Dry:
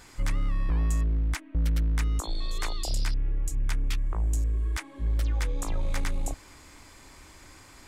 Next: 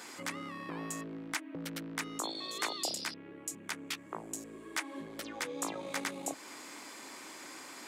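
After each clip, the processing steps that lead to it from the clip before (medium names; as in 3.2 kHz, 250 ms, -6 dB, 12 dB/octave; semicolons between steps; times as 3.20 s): compression 1.5:1, threshold -36 dBFS, peak gain reduction 5 dB; high-pass 220 Hz 24 dB/octave; trim +4.5 dB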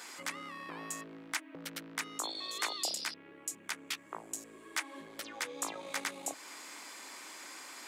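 bass shelf 450 Hz -11 dB; trim +1 dB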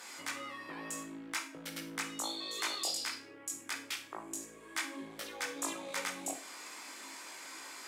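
chorus voices 6, 0.37 Hz, delay 20 ms, depth 2.1 ms; Chebyshev shaper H 5 -30 dB, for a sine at -23.5 dBFS; Schroeder reverb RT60 0.39 s, combs from 33 ms, DRR 7.5 dB; trim +1.5 dB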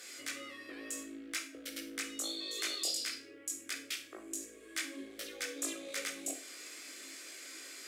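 static phaser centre 380 Hz, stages 4; trim +1 dB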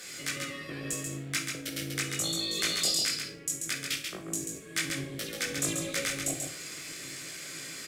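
octave divider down 1 oct, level +1 dB; in parallel at -8 dB: crossover distortion -55 dBFS; on the sum: delay 137 ms -5 dB; trim +4 dB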